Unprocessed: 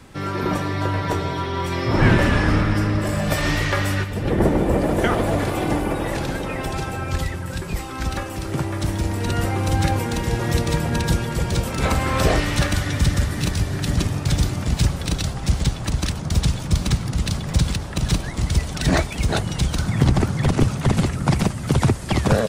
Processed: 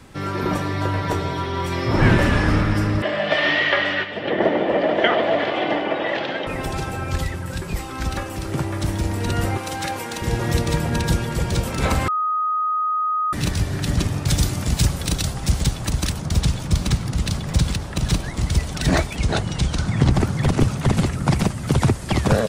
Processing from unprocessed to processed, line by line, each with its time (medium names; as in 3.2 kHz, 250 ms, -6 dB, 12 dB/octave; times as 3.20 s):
3.02–6.47 s: cabinet simulation 290–4300 Hz, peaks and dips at 640 Hz +8 dB, 1.9 kHz +8 dB, 3.1 kHz +10 dB
9.57–10.22 s: high-pass 610 Hz 6 dB/octave
12.08–13.33 s: bleep 1.25 kHz -18.5 dBFS
14.27–16.25 s: treble shelf 5.1 kHz -> 9.8 kHz +8.5 dB
19.16–20.11 s: low-pass 8.5 kHz